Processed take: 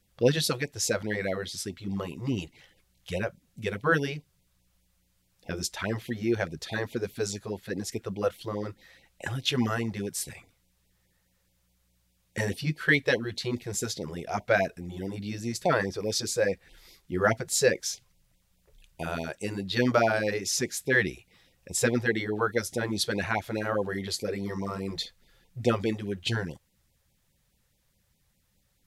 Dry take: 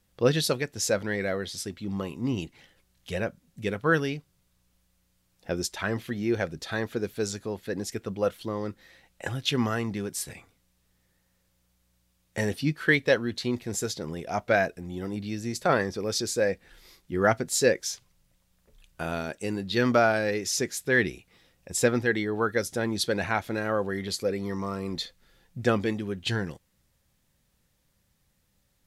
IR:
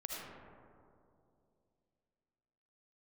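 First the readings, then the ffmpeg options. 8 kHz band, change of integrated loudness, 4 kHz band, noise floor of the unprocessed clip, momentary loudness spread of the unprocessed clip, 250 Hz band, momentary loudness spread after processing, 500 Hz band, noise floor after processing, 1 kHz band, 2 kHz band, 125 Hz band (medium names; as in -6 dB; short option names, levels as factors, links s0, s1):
0.0 dB, -1.0 dB, 0.0 dB, -71 dBFS, 11 LU, -2.0 dB, 11 LU, -1.5 dB, -71 dBFS, -2.0 dB, -0.5 dB, -0.5 dB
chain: -af "afftfilt=real='re*(1-between(b*sr/1024,210*pow(1500/210,0.5+0.5*sin(2*PI*4.8*pts/sr))/1.41,210*pow(1500/210,0.5+0.5*sin(2*PI*4.8*pts/sr))*1.41))':imag='im*(1-between(b*sr/1024,210*pow(1500/210,0.5+0.5*sin(2*PI*4.8*pts/sr))/1.41,210*pow(1500/210,0.5+0.5*sin(2*PI*4.8*pts/sr))*1.41))':win_size=1024:overlap=0.75"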